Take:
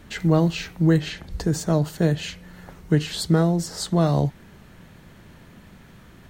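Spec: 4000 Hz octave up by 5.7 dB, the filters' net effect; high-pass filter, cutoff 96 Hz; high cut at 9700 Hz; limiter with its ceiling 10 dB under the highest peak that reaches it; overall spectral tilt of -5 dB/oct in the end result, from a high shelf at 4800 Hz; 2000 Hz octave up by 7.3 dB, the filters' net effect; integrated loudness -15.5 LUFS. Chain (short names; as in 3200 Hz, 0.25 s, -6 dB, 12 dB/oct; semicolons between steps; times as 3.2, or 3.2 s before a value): HPF 96 Hz; LPF 9700 Hz; bell 2000 Hz +8.5 dB; bell 4000 Hz +7 dB; high shelf 4800 Hz -5.5 dB; gain +11 dB; limiter -5 dBFS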